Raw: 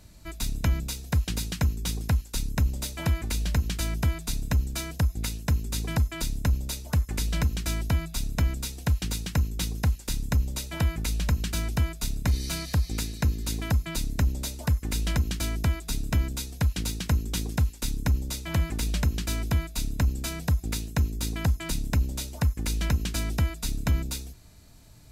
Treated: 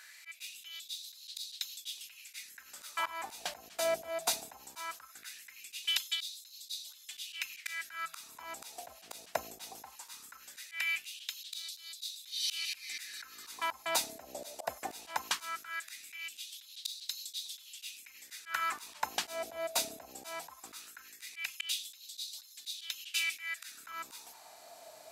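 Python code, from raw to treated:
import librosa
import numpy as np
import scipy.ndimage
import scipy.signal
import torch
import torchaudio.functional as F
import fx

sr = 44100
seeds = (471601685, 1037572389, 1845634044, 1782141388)

y = fx.filter_lfo_highpass(x, sr, shape='sine', hz=0.19, low_hz=650.0, high_hz=4000.0, q=5.4)
y = fx.auto_swell(y, sr, attack_ms=245.0)
y = y * librosa.db_to_amplitude(3.0)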